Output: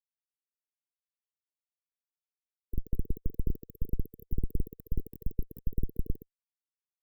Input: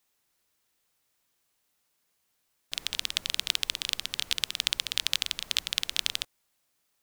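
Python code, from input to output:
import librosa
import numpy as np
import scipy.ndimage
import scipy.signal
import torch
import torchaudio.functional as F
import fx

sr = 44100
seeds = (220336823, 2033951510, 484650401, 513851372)

y = fx.schmitt(x, sr, flips_db=-16.0)
y = fx.env_flanger(y, sr, rest_ms=8.6, full_db=-37.0)
y = fx.brickwall_bandstop(y, sr, low_hz=470.0, high_hz=12000.0)
y = y * librosa.db_to_amplitude(12.5)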